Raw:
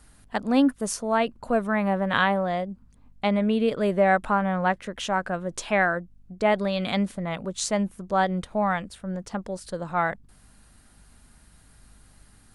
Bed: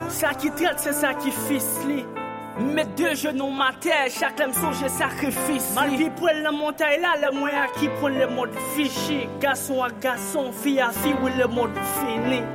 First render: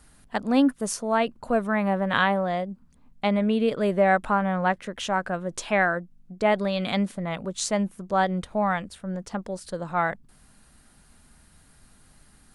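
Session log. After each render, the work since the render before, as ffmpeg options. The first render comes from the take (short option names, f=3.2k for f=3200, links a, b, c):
-af "bandreject=f=50:t=h:w=4,bandreject=f=100:t=h:w=4"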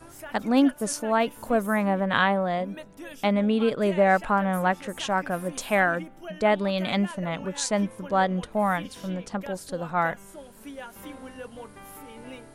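-filter_complex "[1:a]volume=-19dB[a];[0:a][a]amix=inputs=2:normalize=0"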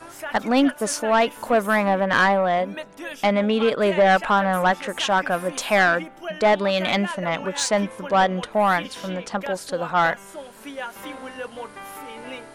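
-filter_complex "[0:a]asplit=2[a][b];[b]highpass=f=720:p=1,volume=16dB,asoftclip=type=tanh:threshold=-7.5dB[c];[a][c]amix=inputs=2:normalize=0,lowpass=f=4.2k:p=1,volume=-6dB"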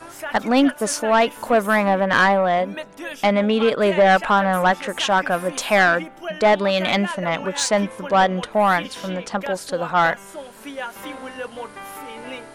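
-af "volume=2dB"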